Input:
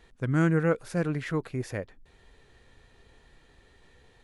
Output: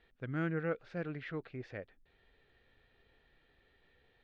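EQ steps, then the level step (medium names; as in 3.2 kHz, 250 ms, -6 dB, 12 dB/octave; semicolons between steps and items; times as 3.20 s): low-pass 3.8 kHz 24 dB/octave; bass shelf 350 Hz -6.5 dB; peaking EQ 1 kHz -7.5 dB 0.39 oct; -7.5 dB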